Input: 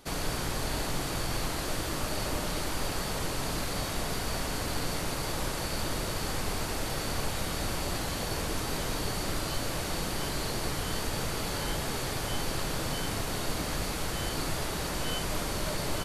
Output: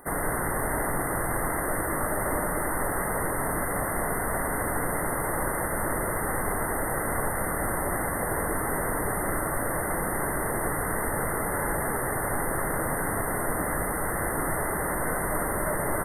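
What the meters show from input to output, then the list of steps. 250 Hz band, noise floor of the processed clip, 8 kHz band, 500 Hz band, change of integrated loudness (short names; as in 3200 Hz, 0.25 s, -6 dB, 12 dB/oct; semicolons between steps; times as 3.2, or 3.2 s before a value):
+4.0 dB, -29 dBFS, +4.5 dB, +6.5 dB, +4.5 dB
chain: low shelf 280 Hz -8.5 dB; crackle 170/s -43 dBFS; brick-wall FIR band-stop 2100–8400 Hz; gain +8.5 dB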